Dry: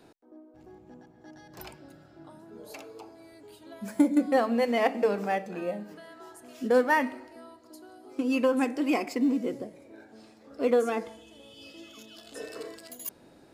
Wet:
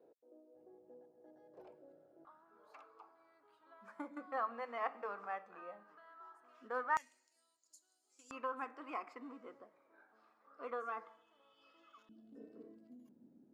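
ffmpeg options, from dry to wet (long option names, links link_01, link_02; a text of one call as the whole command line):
ffmpeg -i in.wav -af "asetnsamples=nb_out_samples=441:pad=0,asendcmd='2.25 bandpass f 1200;6.97 bandpass f 7000;8.31 bandpass f 1200;12.09 bandpass f 230',bandpass=frequency=500:width_type=q:width=5.3:csg=0" out.wav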